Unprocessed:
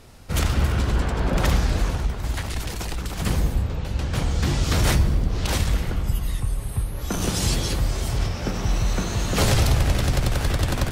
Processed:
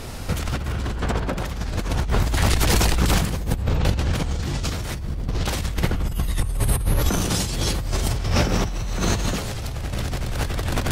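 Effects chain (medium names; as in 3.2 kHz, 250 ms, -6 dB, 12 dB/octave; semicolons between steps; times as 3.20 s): compressor with a negative ratio -30 dBFS, ratio -1; trim +7 dB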